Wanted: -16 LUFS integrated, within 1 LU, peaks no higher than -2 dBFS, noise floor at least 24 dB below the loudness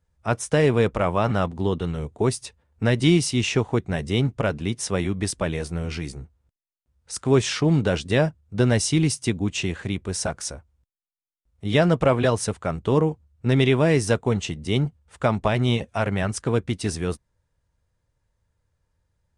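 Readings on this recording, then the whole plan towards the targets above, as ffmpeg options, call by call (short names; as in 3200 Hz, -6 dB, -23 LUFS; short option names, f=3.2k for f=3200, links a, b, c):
loudness -23.5 LUFS; peak -7.0 dBFS; loudness target -16.0 LUFS
-> -af "volume=7.5dB,alimiter=limit=-2dB:level=0:latency=1"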